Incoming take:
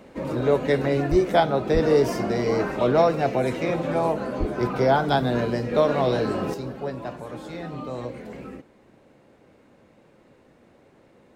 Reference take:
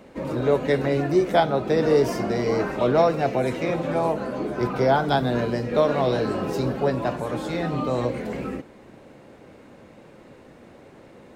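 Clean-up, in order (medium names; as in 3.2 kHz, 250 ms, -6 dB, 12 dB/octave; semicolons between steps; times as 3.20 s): 1.10–1.22 s: high-pass 140 Hz 24 dB/octave; 1.73–1.85 s: high-pass 140 Hz 24 dB/octave; 4.39–4.51 s: high-pass 140 Hz 24 dB/octave; trim 0 dB, from 6.54 s +8 dB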